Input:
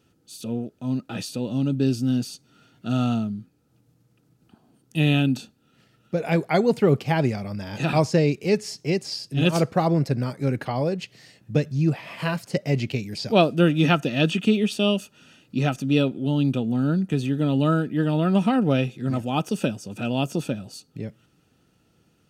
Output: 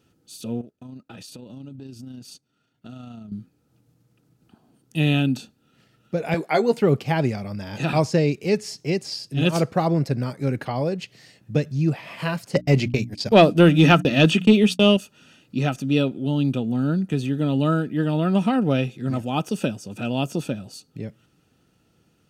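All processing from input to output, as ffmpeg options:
ffmpeg -i in.wav -filter_complex "[0:a]asettb=1/sr,asplit=3[link_01][link_02][link_03];[link_01]atrim=end=0.614[link_04];[link_02]atrim=start=0.61:end=3.32,asetpts=PTS-STARTPTS,afade=type=in:duration=0.004:curve=qsin,afade=type=out:start_time=2.706:duration=0.004:curve=qsin,acompressor=threshold=-37dB:ratio=4:attack=3.2:release=140:knee=1:detection=peak,tremolo=f=28:d=0.333,agate=range=-13dB:threshold=-50dB:ratio=16:release=100:detection=peak[link_05];[link_03]atrim=start=3.316[link_06];[link_04][link_05]acrossfade=duration=0.004:curve1=hsin:curve2=qsin[link_07];[link_07][link_06]acrossfade=duration=0.004:curve1=qsin:curve2=hsin,asettb=1/sr,asplit=3[link_08][link_09][link_10];[link_08]atrim=end=6.344[link_11];[link_09]atrim=start=6.34:end=6.82,asetpts=PTS-STARTPTS,afade=type=in:duration=0.004:curve=qsin,afade=type=out:start_time=0.476:duration=0.004:curve=qsin,highpass=270,asplit=2[link_12][link_13];[link_13]adelay=13,volume=-6.5dB[link_14];[link_12][link_14]amix=inputs=2:normalize=0,atrim=end_sample=21168[link_15];[link_10]atrim=start=6.816[link_16];[link_11][link_15]acrossfade=duration=0.004:curve1=hsin:curve2=qsin[link_17];[link_17][link_16]acrossfade=duration=0.004:curve1=qsin:curve2=hsin,asettb=1/sr,asplit=3[link_18][link_19][link_20];[link_18]atrim=end=12.554[link_21];[link_19]atrim=start=12.55:end=14.97,asetpts=PTS-STARTPTS,afade=type=in:duration=0.004:curve=qsin,afade=type=out:start_time=2.416:duration=0.004:curve=qsin,agate=range=-48dB:threshold=-32dB:ratio=16:release=100:detection=peak,bandreject=frequency=60:width_type=h:width=6,bandreject=frequency=120:width_type=h:width=6,bandreject=frequency=180:width_type=h:width=6,bandreject=frequency=240:width_type=h:width=6,bandreject=frequency=300:width_type=h:width=6,acontrast=49[link_22];[link_20]atrim=start=14.966[link_23];[link_21][link_22]acrossfade=duration=0.004:curve1=hsin:curve2=qsin[link_24];[link_24][link_23]acrossfade=duration=0.004:curve1=qsin:curve2=hsin" out.wav

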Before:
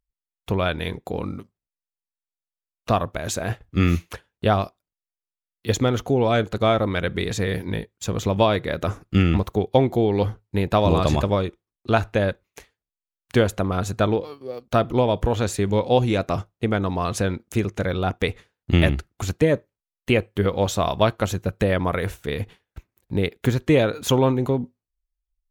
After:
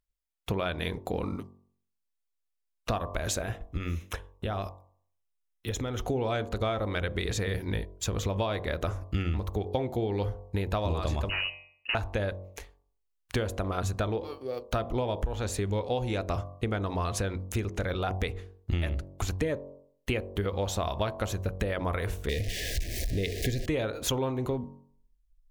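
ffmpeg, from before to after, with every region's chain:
ffmpeg -i in.wav -filter_complex "[0:a]asettb=1/sr,asplit=3[link_01][link_02][link_03];[link_01]atrim=end=3.414[link_04];[link_02]atrim=start=3.41:end=6.02,asetpts=PTS-STARTPTS,afade=type=in:duration=0.004:curve=qsin,afade=type=out:start_time=2.606:duration=0.004:curve=qsin,acompressor=threshold=-26dB:ratio=6:attack=3.2:release=140:knee=1:detection=peak,asuperstop=centerf=4500:order=8:qfactor=7.6[link_05];[link_03]atrim=start=6.016[link_06];[link_04][link_05]acrossfade=duration=0.004:curve1=hsin:curve2=qsin[link_07];[link_07][link_06]acrossfade=duration=0.004:curve1=qsin:curve2=hsin,asettb=1/sr,asplit=3[link_08][link_09][link_10];[link_08]atrim=end=11.294[link_11];[link_09]atrim=start=11.29:end=11.95,asetpts=PTS-STARTPTS,afade=type=in:duration=0.004:curve=qsin,afade=type=out:start_time=0.656:duration=0.004:curve=qsin,bandreject=frequency=152.5:width_type=h:width=4,bandreject=frequency=305:width_type=h:width=4,bandreject=frequency=457.5:width_type=h:width=4,bandreject=frequency=610:width_type=h:width=4,bandreject=frequency=762.5:width_type=h:width=4,bandreject=frequency=915:width_type=h:width=4,bandreject=frequency=1067.5:width_type=h:width=4,aeval=exprs='0.1*(abs(mod(val(0)/0.1+3,4)-2)-1)':channel_layout=same,lowpass=frequency=2600:width_type=q:width=0.5098,lowpass=frequency=2600:width_type=q:width=0.6013,lowpass=frequency=2600:width_type=q:width=0.9,lowpass=frequency=2600:width_type=q:width=2.563,afreqshift=-3000[link_12];[link_10]atrim=start=11.946[link_13];[link_11][link_12]acrossfade=duration=0.004:curve1=hsin:curve2=qsin[link_14];[link_14][link_13]acrossfade=duration=0.004:curve1=qsin:curve2=hsin,asettb=1/sr,asplit=3[link_15][link_16][link_17];[link_15]atrim=end=22.294[link_18];[link_16]atrim=start=22.29:end=23.66,asetpts=PTS-STARTPTS,afade=type=in:duration=0.004:curve=qsin,afade=type=out:start_time=1.366:duration=0.004:curve=qsin,aeval=exprs='val(0)+0.5*0.0422*sgn(val(0))':channel_layout=same,asuperstop=centerf=1100:order=20:qfactor=1.2,equalizer=frequency=5000:width=1.3:gain=5.5[link_19];[link_17]atrim=start=23.656[link_20];[link_18][link_19]acrossfade=duration=0.004:curve1=hsin:curve2=qsin[link_21];[link_21][link_20]acrossfade=duration=0.004:curve1=qsin:curve2=hsin,bandreject=frequency=46.71:width_type=h:width=4,bandreject=frequency=93.42:width_type=h:width=4,bandreject=frequency=140.13:width_type=h:width=4,bandreject=frequency=186.84:width_type=h:width=4,bandreject=frequency=233.55:width_type=h:width=4,bandreject=frequency=280.26:width_type=h:width=4,bandreject=frequency=326.97:width_type=h:width=4,bandreject=frequency=373.68:width_type=h:width=4,bandreject=frequency=420.39:width_type=h:width=4,bandreject=frequency=467.1:width_type=h:width=4,bandreject=frequency=513.81:width_type=h:width=4,bandreject=frequency=560.52:width_type=h:width=4,bandreject=frequency=607.23:width_type=h:width=4,bandreject=frequency=653.94:width_type=h:width=4,bandreject=frequency=700.65:width_type=h:width=4,bandreject=frequency=747.36:width_type=h:width=4,bandreject=frequency=794.07:width_type=h:width=4,bandreject=frequency=840.78:width_type=h:width=4,bandreject=frequency=887.49:width_type=h:width=4,bandreject=frequency=934.2:width_type=h:width=4,bandreject=frequency=980.91:width_type=h:width=4,bandreject=frequency=1027.62:width_type=h:width=4,bandreject=frequency=1074.33:width_type=h:width=4,bandreject=frequency=1121.04:width_type=h:width=4,bandreject=frequency=1167.75:width_type=h:width=4,asubboost=boost=6.5:cutoff=58,acompressor=threshold=-27dB:ratio=5" out.wav

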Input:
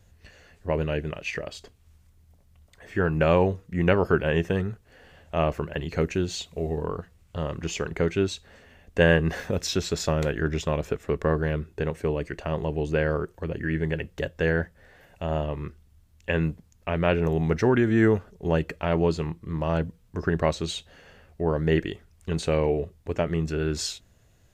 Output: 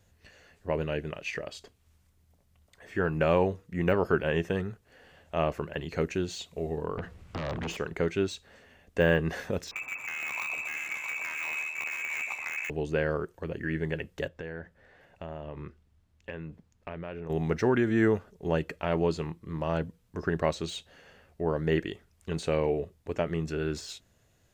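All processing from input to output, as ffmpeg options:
ffmpeg -i in.wav -filter_complex "[0:a]asettb=1/sr,asplit=3[link_01][link_02][link_03];[link_01]atrim=end=6.974[link_04];[link_02]atrim=start=6.97:end=7.77,asetpts=PTS-STARTPTS,afade=type=in:duration=0.004:curve=qsin,afade=type=out:start_time=0.796:duration=0.004:curve=qsin,lowpass=frequency=2000:poles=1,acompressor=threshold=-34dB:ratio=5:attack=3.2:release=140:knee=1:detection=peak,aeval=exprs='0.0596*sin(PI/2*3.98*val(0)/0.0596)':channel_layout=same[link_05];[link_03]atrim=start=7.766[link_06];[link_04][link_05]acrossfade=duration=0.004:curve1=hsin:curve2=qsin[link_07];[link_07][link_06]acrossfade=duration=0.004:curve1=qsin:curve2=hsin,asettb=1/sr,asplit=3[link_08][link_09][link_10];[link_08]atrim=end=9.714[link_11];[link_09]atrim=start=9.71:end=12.7,asetpts=PTS-STARTPTS,afade=type=in:duration=0.004:curve=qsin,afade=type=out:start_time=2.986:duration=0.004:curve=qsin,lowpass=frequency=2300:width_type=q:width=0.5098,lowpass=frequency=2300:width_type=q:width=0.6013,lowpass=frequency=2300:width_type=q:width=0.9,lowpass=frequency=2300:width_type=q:width=2.563,afreqshift=-2700,asoftclip=type=hard:threshold=-23dB,aecho=1:1:57|121|235|662|828|886:0.126|0.398|0.2|0.422|0.133|0.266,atrim=end_sample=131859[link_12];[link_10]atrim=start=12.696[link_13];[link_11][link_12]acrossfade=duration=0.004:curve1=hsin:curve2=qsin[link_14];[link_14][link_13]acrossfade=duration=0.004:curve1=qsin:curve2=hsin,asettb=1/sr,asplit=3[link_15][link_16][link_17];[link_15]atrim=end=14.284[link_18];[link_16]atrim=start=14.28:end=17.3,asetpts=PTS-STARTPTS,afade=type=in:duration=0.004:curve=qsin,afade=type=out:start_time=3.016:duration=0.004:curve=qsin,aemphasis=mode=reproduction:type=50kf,acompressor=threshold=-30dB:ratio=12:attack=3.2:release=140:knee=1:detection=peak[link_19];[link_17]atrim=start=17.296[link_20];[link_18][link_19]acrossfade=duration=0.004:curve1=hsin:curve2=qsin[link_21];[link_21][link_20]acrossfade=duration=0.004:curve1=qsin:curve2=hsin,deesser=0.8,lowshelf=frequency=100:gain=-8.5,volume=-3dB" out.wav

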